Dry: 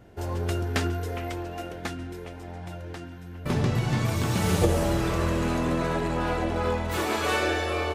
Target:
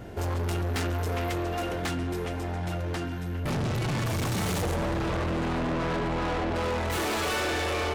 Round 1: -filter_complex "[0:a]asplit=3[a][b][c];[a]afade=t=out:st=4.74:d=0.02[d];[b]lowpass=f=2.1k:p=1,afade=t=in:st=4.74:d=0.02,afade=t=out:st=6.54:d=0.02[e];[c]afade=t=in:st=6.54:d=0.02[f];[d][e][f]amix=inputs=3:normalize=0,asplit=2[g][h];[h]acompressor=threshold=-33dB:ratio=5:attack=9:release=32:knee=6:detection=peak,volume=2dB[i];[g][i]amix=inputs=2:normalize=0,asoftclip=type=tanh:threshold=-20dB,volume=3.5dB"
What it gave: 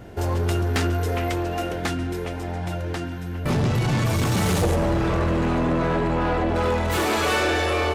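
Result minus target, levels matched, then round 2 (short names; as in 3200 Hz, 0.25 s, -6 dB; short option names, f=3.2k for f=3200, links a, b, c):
soft clip: distortion -7 dB
-filter_complex "[0:a]asplit=3[a][b][c];[a]afade=t=out:st=4.74:d=0.02[d];[b]lowpass=f=2.1k:p=1,afade=t=in:st=4.74:d=0.02,afade=t=out:st=6.54:d=0.02[e];[c]afade=t=in:st=6.54:d=0.02[f];[d][e][f]amix=inputs=3:normalize=0,asplit=2[g][h];[h]acompressor=threshold=-33dB:ratio=5:attack=9:release=32:knee=6:detection=peak,volume=2dB[i];[g][i]amix=inputs=2:normalize=0,asoftclip=type=tanh:threshold=-30dB,volume=3.5dB"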